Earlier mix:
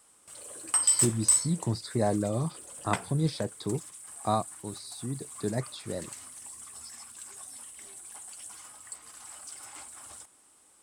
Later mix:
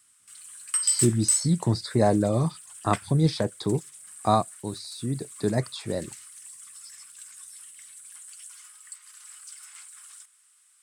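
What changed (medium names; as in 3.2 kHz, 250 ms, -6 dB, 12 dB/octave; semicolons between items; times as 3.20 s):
speech +6.0 dB; background: add inverse Chebyshev high-pass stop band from 520 Hz, stop band 50 dB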